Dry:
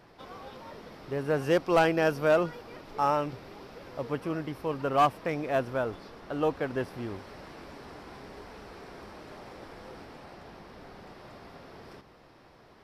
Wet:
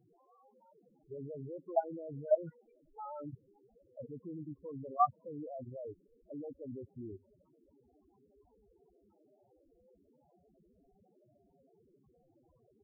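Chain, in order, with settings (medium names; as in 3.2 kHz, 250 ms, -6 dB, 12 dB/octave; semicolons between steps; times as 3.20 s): level held to a coarse grid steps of 20 dB; loudest bins only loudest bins 4; trim -1 dB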